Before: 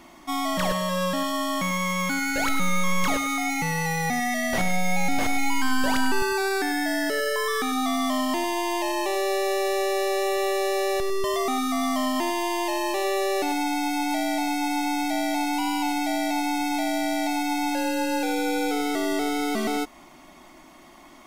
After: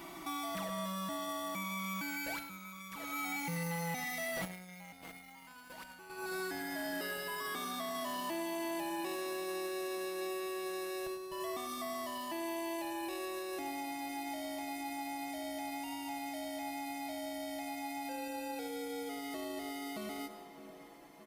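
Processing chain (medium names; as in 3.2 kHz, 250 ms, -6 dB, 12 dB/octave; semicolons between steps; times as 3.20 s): Doppler pass-by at 4.53 s, 14 m/s, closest 9.4 m; comb 6.1 ms, depth 60%; filtered feedback delay 615 ms, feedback 68%, low-pass 1.9 kHz, level -20 dB; on a send at -15 dB: reverberation RT60 1.5 s, pre-delay 66 ms; on the sum: compression 3:1, threshold -46 dBFS, peak gain reduction 24 dB; saturation -39.5 dBFS, distortion -14 dB; treble shelf 11 kHz +10 dB; peak limiter -48 dBFS, peak gain reduction 11.5 dB; high-pass 50 Hz; peaking EQ 6.7 kHz -5 dB 0.43 oct; trim +16 dB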